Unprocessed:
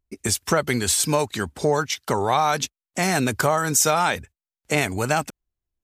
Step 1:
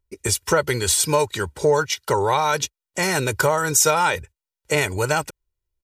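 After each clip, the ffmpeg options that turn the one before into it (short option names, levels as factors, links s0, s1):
-af "aecho=1:1:2.1:0.69"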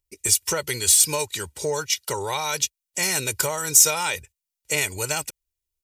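-af "aexciter=amount=2.9:drive=5.8:freq=2100,volume=0.376"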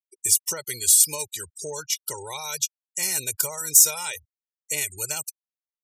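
-af "crystalizer=i=2:c=0,afftfilt=real='re*gte(hypot(re,im),0.0501)':imag='im*gte(hypot(re,im),0.0501)':win_size=1024:overlap=0.75,volume=0.355"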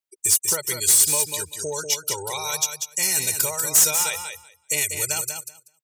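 -af "asoftclip=type=tanh:threshold=0.168,aecho=1:1:192|384|576:0.447|0.067|0.0101,volume=1.68"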